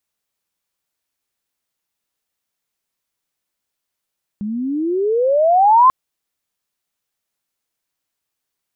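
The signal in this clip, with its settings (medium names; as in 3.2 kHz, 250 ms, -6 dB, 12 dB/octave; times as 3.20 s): gliding synth tone sine, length 1.49 s, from 200 Hz, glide +29 st, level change +15 dB, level -6 dB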